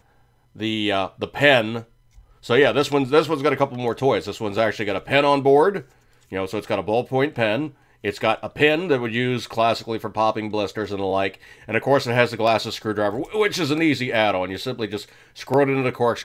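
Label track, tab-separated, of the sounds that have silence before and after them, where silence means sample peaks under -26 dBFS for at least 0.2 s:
0.600000	1.790000	sound
2.460000	5.800000	sound
6.330000	7.670000	sound
8.040000	11.290000	sound
11.690000	15.020000	sound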